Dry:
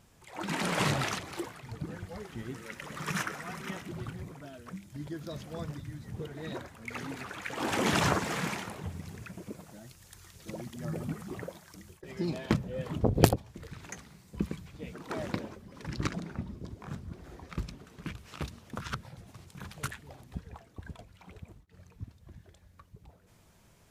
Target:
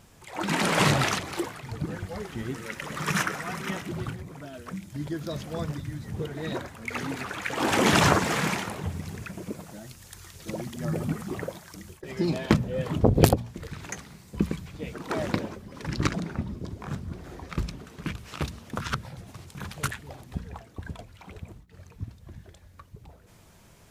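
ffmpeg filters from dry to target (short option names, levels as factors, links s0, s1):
-filter_complex "[0:a]bandreject=f=59.17:t=h:w=4,bandreject=f=118.34:t=h:w=4,bandreject=f=177.51:t=h:w=4,bandreject=f=236.68:t=h:w=4,asettb=1/sr,asplit=3[s0][s1][s2];[s0]atrim=end=4.144[s3];[s1]atrim=start=4.14:end=4.55,asetpts=PTS-STARTPTS,afade=t=in:d=0.004:c=qsin,afade=t=out:st=0.406:d=0.004:c=qsin,acompressor=threshold=0.00708:ratio=6[s4];[s2]atrim=start=4.546[s5];[s3][s4]acrossfade=d=0.004:c1=hsin:c2=qsin[s6];[s6][s5]acrossfade=d=0.004:c1=qsin:c2=hsin,alimiter=level_in=2.51:limit=0.891:release=50:level=0:latency=1,volume=0.891"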